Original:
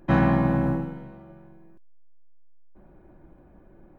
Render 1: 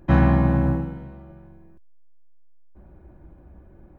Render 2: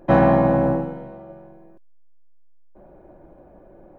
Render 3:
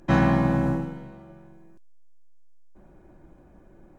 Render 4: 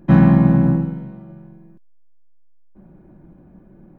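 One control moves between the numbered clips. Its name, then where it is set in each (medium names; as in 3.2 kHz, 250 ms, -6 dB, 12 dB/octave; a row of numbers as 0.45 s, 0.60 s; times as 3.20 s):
peaking EQ, frequency: 68 Hz, 590 Hz, 6.5 kHz, 180 Hz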